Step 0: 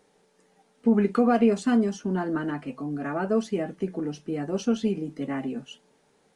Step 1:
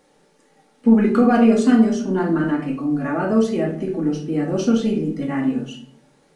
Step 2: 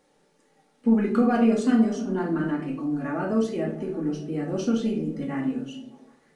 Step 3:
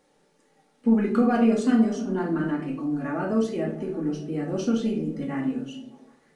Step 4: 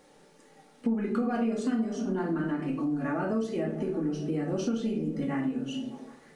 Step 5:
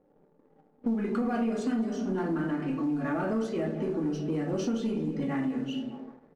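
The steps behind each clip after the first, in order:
rectangular room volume 680 cubic metres, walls furnished, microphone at 2.3 metres; level +3.5 dB
echo through a band-pass that steps 152 ms, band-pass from 170 Hz, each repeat 0.7 octaves, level −11 dB; level −6.5 dB
no processing that can be heard
downward compressor 4 to 1, threshold −35 dBFS, peak gain reduction 17 dB; level +6.5 dB
far-end echo of a speakerphone 210 ms, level −13 dB; low-pass that shuts in the quiet parts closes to 540 Hz, open at −25 dBFS; leveller curve on the samples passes 1; level −3 dB

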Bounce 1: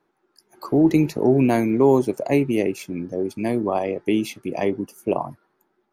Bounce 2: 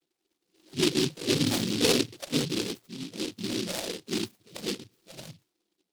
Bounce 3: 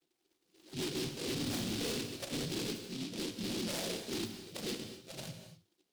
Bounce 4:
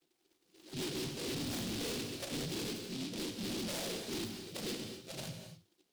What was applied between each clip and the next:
harmonic-percussive split with one part muted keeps harmonic; cochlear-implant simulation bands 16; short delay modulated by noise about 3,700 Hz, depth 0.27 ms; level −8 dB
downward compressor, threshold −26 dBFS, peak gain reduction 7.5 dB; soft clipping −35 dBFS, distortion −7 dB; reverb whose tail is shaped and stops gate 280 ms flat, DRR 6.5 dB
soft clipping −39 dBFS, distortion −12 dB; level +3 dB

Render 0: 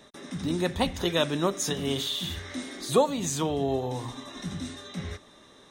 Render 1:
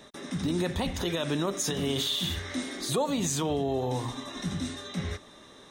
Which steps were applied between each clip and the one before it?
brickwall limiter −22 dBFS, peak gain reduction 10.5 dB
level +2.5 dB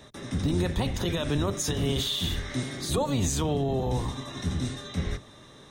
sub-octave generator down 1 octave, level +2 dB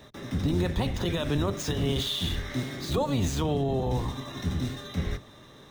running median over 5 samples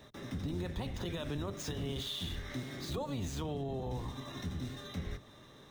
downward compressor 2 to 1, threshold −33 dBFS, peak gain reduction 6.5 dB
level −5.5 dB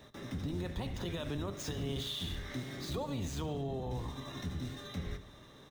repeating echo 72 ms, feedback 60%, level −16 dB

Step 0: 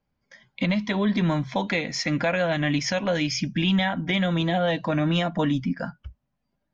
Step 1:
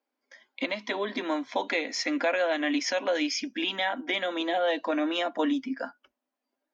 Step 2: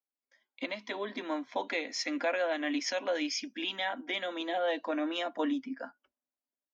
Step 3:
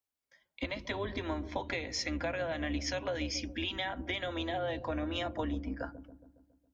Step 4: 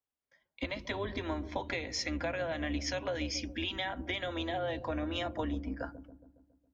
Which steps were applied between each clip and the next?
elliptic high-pass filter 260 Hz, stop band 40 dB; level −1.5 dB
multiband upward and downward expander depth 40%; level −5 dB
sub-octave generator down 2 octaves, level 0 dB; downward compressor, threshold −35 dBFS, peak gain reduction 10 dB; delay with a low-pass on its return 138 ms, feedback 57%, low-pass 410 Hz, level −8 dB; level +3 dB
one half of a high-frequency compander decoder only

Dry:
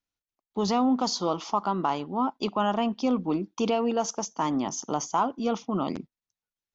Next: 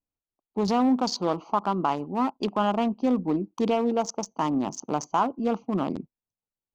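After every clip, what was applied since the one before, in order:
adaptive Wiener filter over 25 samples
level +2 dB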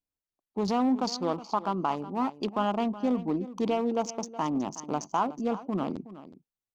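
single-tap delay 369 ms −15.5 dB
level −3.5 dB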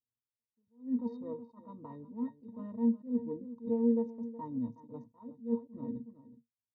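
tilt shelving filter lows +9 dB, about 720 Hz
resonances in every octave A#, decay 0.14 s
level that may rise only so fast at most 200 dB per second
level −3 dB

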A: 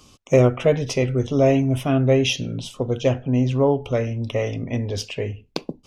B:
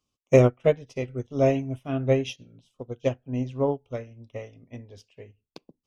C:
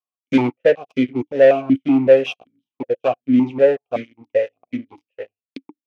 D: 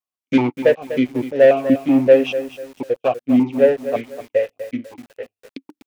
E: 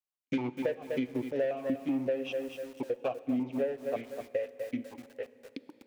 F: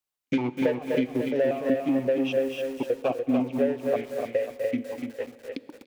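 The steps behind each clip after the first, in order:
expander for the loud parts 2.5 to 1, over −32 dBFS
leveller curve on the samples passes 5; formant filter that steps through the vowels 5.3 Hz; level +5.5 dB
feedback echo at a low word length 247 ms, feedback 35%, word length 6 bits, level −12 dB
downward compressor 6 to 1, threshold −21 dBFS, peak gain reduction 14.5 dB; dense smooth reverb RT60 3.2 s, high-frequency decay 0.9×, DRR 16 dB; level −7.5 dB
single-tap delay 292 ms −5 dB; level +6 dB

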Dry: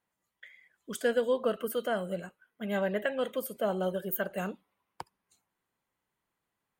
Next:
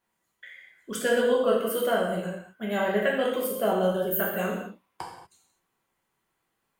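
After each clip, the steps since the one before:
reverb whose tail is shaped and stops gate 270 ms falling, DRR −3.5 dB
level +2 dB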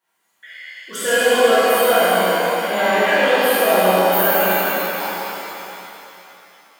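high-pass filter 600 Hz 6 dB per octave
reverb with rising layers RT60 3.1 s, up +7 semitones, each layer −8 dB, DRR −11 dB
level +2 dB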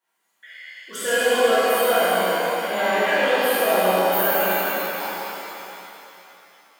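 high-pass filter 170 Hz 12 dB per octave
level −4 dB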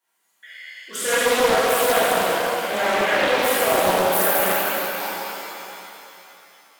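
parametric band 11,000 Hz +5.5 dB 2.3 octaves
highs frequency-modulated by the lows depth 0.41 ms

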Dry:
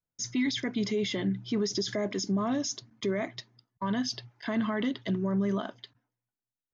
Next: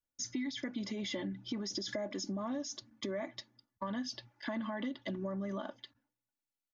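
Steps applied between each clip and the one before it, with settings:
comb filter 3.5 ms, depth 72%
dynamic equaliser 730 Hz, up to +5 dB, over −43 dBFS, Q 0.97
downward compressor 5 to 1, threshold −31 dBFS, peak gain reduction 10.5 dB
level −4.5 dB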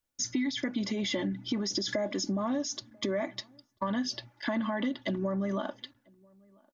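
slap from a distant wall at 170 metres, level −29 dB
level +7 dB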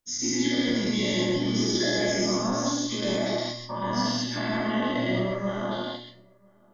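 every bin's largest magnitude spread in time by 240 ms
tuned comb filter 120 Hz, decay 0.4 s, harmonics all, mix 70%
on a send at −1.5 dB: convolution reverb RT60 0.20 s, pre-delay 122 ms
on the sum: level +3.5 dB

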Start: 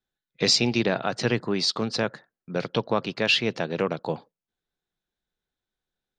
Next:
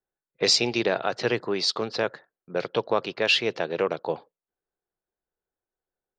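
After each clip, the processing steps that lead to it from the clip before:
low shelf with overshoot 300 Hz −6.5 dB, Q 1.5
low-pass that shuts in the quiet parts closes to 1,200 Hz, open at −19 dBFS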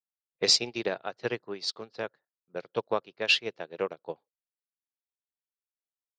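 expander for the loud parts 2.5 to 1, over −35 dBFS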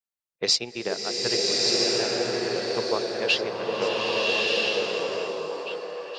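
on a send: echo through a band-pass that steps 475 ms, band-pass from 360 Hz, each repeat 0.7 octaves, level −1.5 dB
on the sum: slow-attack reverb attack 1,280 ms, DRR −4.5 dB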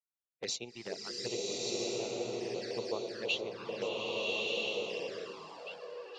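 flanger swept by the level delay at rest 7.3 ms, full sweep at −23 dBFS
level −9 dB

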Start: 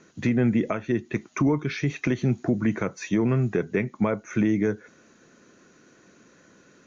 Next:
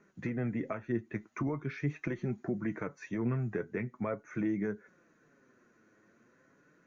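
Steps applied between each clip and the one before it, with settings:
high shelf with overshoot 2,500 Hz −7.5 dB, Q 1.5
flanger 0.42 Hz, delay 4.8 ms, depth 4.8 ms, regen +43%
level −6.5 dB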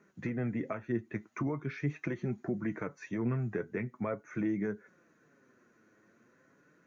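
high-pass filter 46 Hz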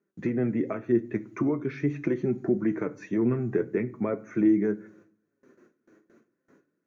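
noise gate with hold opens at −55 dBFS
parametric band 340 Hz +10 dB 1.2 octaves
on a send at −14 dB: convolution reverb RT60 0.55 s, pre-delay 5 ms
on the sum: level +1.5 dB

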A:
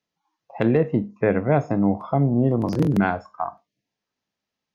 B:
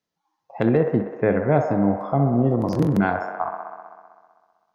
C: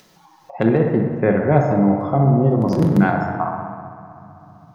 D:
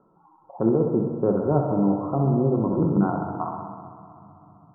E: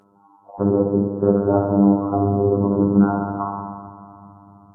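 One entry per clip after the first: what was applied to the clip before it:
parametric band 2,600 Hz −4 dB 0.67 octaves; on a send: delay with a band-pass on its return 64 ms, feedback 78%, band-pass 930 Hz, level −6.5 dB
rectangular room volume 1,600 cubic metres, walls mixed, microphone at 1 metre; upward compression, threshold −34 dBFS; level +2 dB
Chebyshev low-pass with heavy ripple 1,400 Hz, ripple 6 dB; level −2.5 dB
phases set to zero 100 Hz; level +7 dB; Ogg Vorbis 32 kbit/s 48,000 Hz

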